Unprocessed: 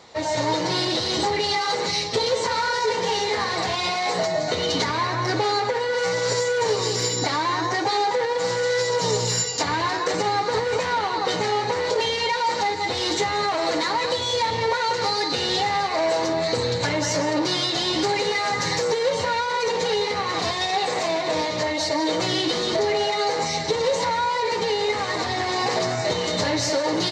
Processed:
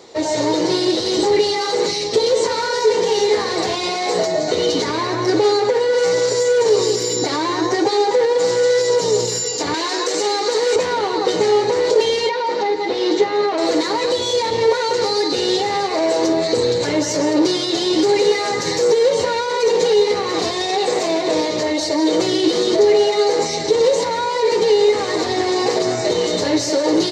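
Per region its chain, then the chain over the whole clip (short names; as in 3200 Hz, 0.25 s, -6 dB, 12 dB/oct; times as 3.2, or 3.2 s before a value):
9.74–10.76 HPF 290 Hz + high shelf 2700 Hz +10.5 dB
12.29–13.58 HPF 190 Hz + air absorption 170 m
whole clip: high shelf 3700 Hz +11 dB; limiter -12 dBFS; bell 380 Hz +15 dB 1.3 oct; gain -2.5 dB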